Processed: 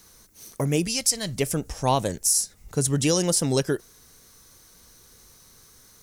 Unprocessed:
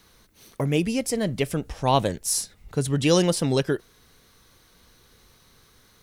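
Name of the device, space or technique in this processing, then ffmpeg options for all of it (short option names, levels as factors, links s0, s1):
over-bright horn tweeter: -filter_complex "[0:a]highshelf=f=4700:t=q:w=1.5:g=8,alimiter=limit=0.299:level=0:latency=1:release=229,asettb=1/sr,asplit=3[s0][s1][s2];[s0]atrim=end=0.874[s3];[s1]atrim=start=0.87:end=1.36,asetpts=PTS-STARTPTS,afade=t=in:d=0.004:c=qsin,afade=t=out:st=0.486:d=0.004:c=qsin,equalizer=f=250:t=o:w=1:g=-8,equalizer=f=500:t=o:w=1:g=-8,equalizer=f=4000:t=o:w=1:g=10[s4];[s2]atrim=start=1.356[s5];[s3][s4]acrossfade=d=0.004:c1=hsin:c2=qsin[s6];[s6][s5]acrossfade=d=0.004:c1=qsin:c2=hsin"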